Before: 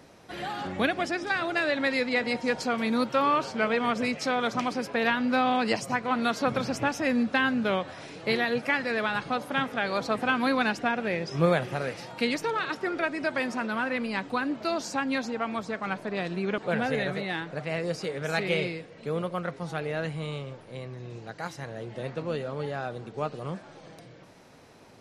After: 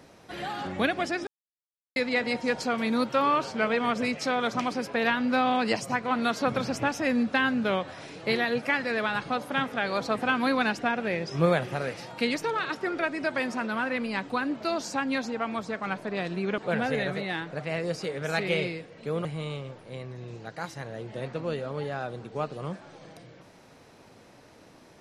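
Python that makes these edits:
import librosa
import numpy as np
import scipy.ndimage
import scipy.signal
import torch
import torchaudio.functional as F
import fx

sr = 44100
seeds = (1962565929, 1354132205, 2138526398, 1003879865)

y = fx.edit(x, sr, fx.silence(start_s=1.27, length_s=0.69),
    fx.cut(start_s=19.25, length_s=0.82), tone=tone)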